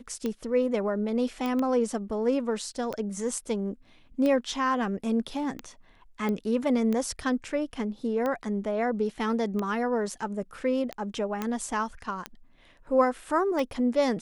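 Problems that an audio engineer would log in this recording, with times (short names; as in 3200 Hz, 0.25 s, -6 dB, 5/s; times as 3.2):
tick 45 rpm -18 dBFS
1.46 pop -19 dBFS
6.29 pop -19 dBFS
11.42 pop -16 dBFS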